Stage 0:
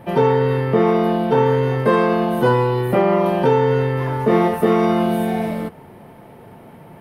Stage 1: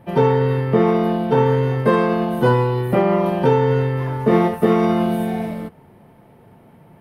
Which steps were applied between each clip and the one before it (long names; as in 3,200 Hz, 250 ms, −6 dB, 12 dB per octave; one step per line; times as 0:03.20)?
bass and treble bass +4 dB, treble 0 dB
expander for the loud parts 1.5 to 1, over −27 dBFS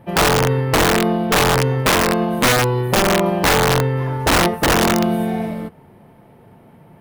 wrap-around overflow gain 10 dB
level +1.5 dB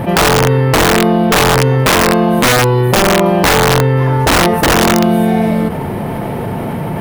envelope flattener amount 70%
level +3.5 dB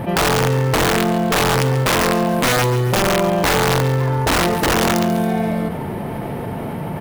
repeating echo 139 ms, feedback 49%, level −12.5 dB
level −6.5 dB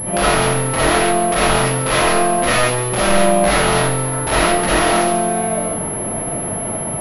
convolution reverb RT60 0.45 s, pre-delay 15 ms, DRR −7.5 dB
switching amplifier with a slow clock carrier 11,000 Hz
level −6 dB